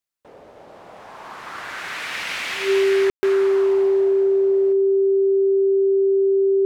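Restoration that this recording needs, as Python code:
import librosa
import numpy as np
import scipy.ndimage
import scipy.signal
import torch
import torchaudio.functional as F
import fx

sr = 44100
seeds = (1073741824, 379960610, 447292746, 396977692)

y = fx.notch(x, sr, hz=390.0, q=30.0)
y = fx.fix_ambience(y, sr, seeds[0], print_start_s=0.0, print_end_s=0.5, start_s=3.1, end_s=3.23)
y = fx.fix_echo_inverse(y, sr, delay_ms=879, level_db=-20.5)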